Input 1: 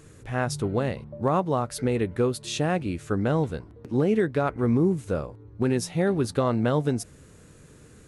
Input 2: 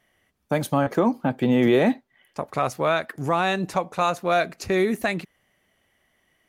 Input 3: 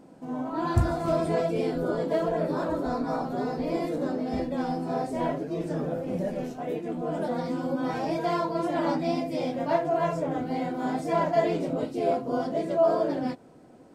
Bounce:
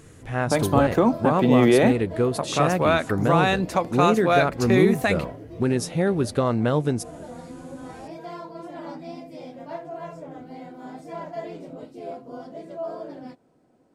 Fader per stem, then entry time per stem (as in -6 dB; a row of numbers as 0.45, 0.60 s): +1.5, +1.5, -10.0 dB; 0.00, 0.00, 0.00 s